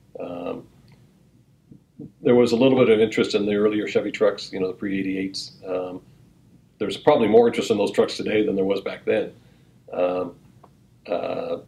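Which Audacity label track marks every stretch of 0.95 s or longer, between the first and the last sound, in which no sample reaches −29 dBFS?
0.590000	2.000000	silence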